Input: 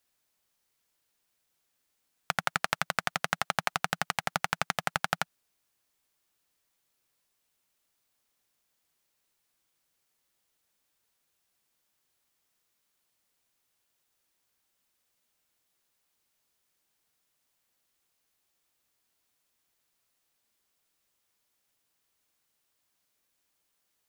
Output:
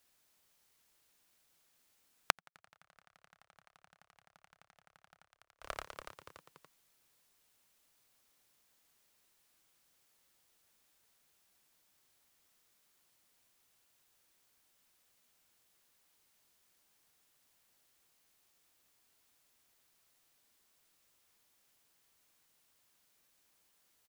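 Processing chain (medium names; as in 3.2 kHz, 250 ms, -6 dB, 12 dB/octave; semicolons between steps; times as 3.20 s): frequency-shifting echo 286 ms, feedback 46%, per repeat -63 Hz, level -9 dB; inverted gate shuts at -23 dBFS, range -40 dB; trim +3.5 dB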